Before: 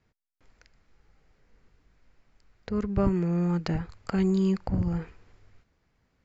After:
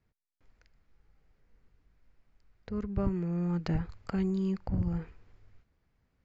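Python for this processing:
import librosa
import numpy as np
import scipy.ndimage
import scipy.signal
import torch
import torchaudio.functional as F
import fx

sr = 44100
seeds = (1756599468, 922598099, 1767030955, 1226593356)

y = fx.low_shelf(x, sr, hz=150.0, db=5.5)
y = fx.rider(y, sr, range_db=10, speed_s=0.5)
y = fx.air_absorb(y, sr, metres=50.0)
y = F.gain(torch.from_numpy(y), -6.5).numpy()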